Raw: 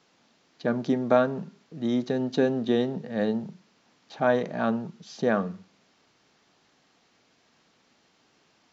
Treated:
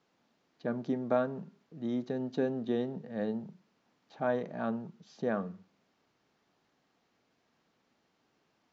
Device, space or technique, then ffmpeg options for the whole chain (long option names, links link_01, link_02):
behind a face mask: -af "highshelf=frequency=2400:gain=-8,volume=-7.5dB"